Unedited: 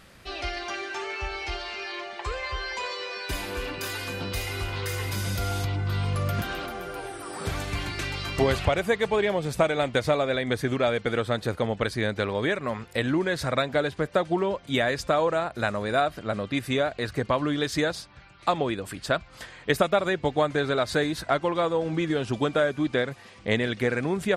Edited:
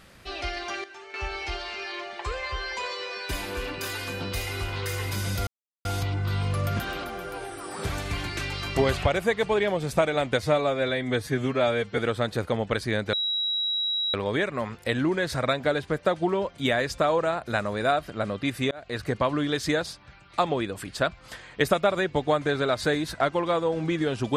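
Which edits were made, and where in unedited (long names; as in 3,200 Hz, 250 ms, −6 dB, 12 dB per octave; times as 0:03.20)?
0:00.84–0:01.14: clip gain −11.5 dB
0:05.47: splice in silence 0.38 s
0:10.04–0:11.08: time-stretch 1.5×
0:12.23: insert tone 3,870 Hz −24 dBFS 1.01 s
0:16.80–0:17.09: fade in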